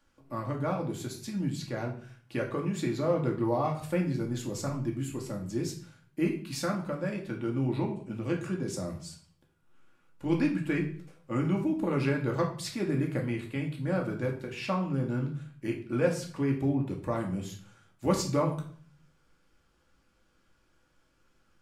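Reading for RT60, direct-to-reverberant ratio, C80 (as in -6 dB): 0.45 s, -0.5 dB, 13.0 dB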